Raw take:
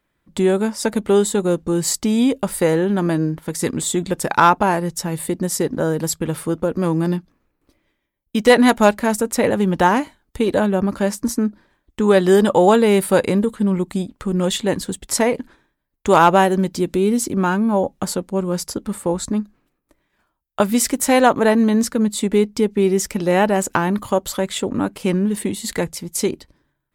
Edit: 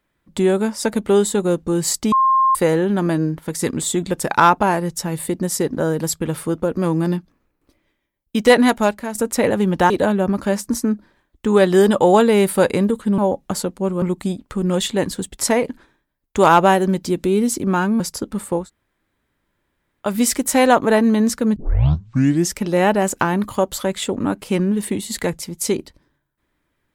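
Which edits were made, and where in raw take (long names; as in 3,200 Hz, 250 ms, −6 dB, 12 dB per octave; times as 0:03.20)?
0:02.12–0:02.55: beep over 1,060 Hz −11.5 dBFS
0:08.52–0:09.15: fade out, to −10.5 dB
0:09.90–0:10.44: remove
0:17.70–0:18.54: move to 0:13.72
0:19.16–0:20.61: fill with room tone, crossfade 0.16 s
0:22.10: tape start 0.97 s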